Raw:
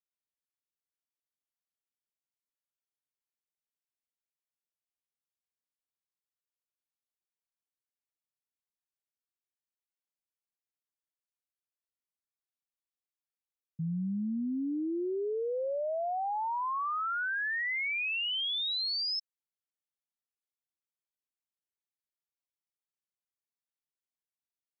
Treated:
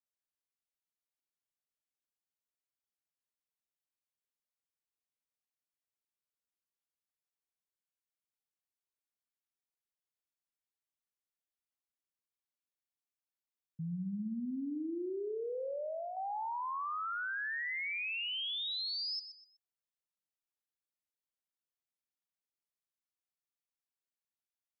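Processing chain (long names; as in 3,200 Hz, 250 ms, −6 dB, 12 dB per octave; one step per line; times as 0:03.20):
0:14.76–0:16.17: parametric band 800 Hz −13.5 dB 0.2 octaves
repeating echo 124 ms, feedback 32%, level −11.5 dB
level −5.5 dB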